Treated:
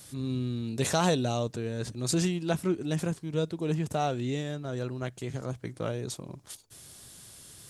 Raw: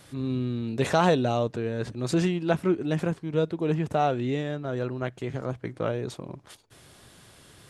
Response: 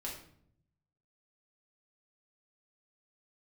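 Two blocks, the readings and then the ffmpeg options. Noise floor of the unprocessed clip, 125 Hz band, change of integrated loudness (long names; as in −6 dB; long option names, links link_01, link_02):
−54 dBFS, −2.0 dB, −3.5 dB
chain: -af "bass=frequency=250:gain=4,treble=frequency=4000:gain=15,volume=-5.5dB"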